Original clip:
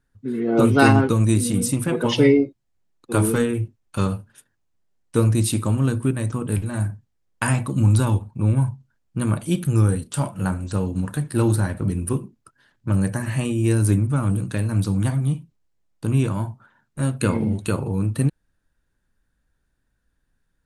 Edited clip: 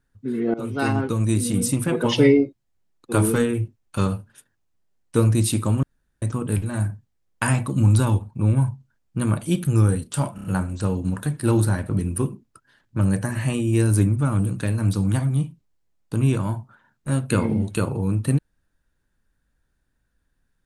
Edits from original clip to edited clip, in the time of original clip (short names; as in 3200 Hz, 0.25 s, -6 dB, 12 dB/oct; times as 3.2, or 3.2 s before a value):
0.54–1.66 fade in, from -18 dB
5.83–6.22 room tone
10.35 stutter 0.03 s, 4 plays